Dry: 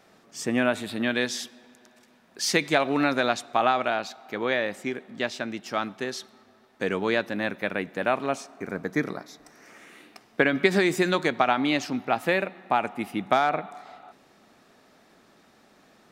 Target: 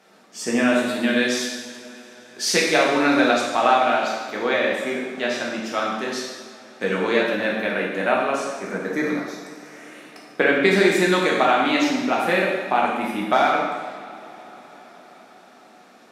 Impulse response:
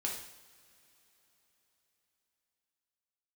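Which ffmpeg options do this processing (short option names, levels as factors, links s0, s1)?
-filter_complex "[0:a]highpass=200[s0];[1:a]atrim=start_sample=2205,asetrate=26901,aresample=44100[s1];[s0][s1]afir=irnorm=-1:irlink=0"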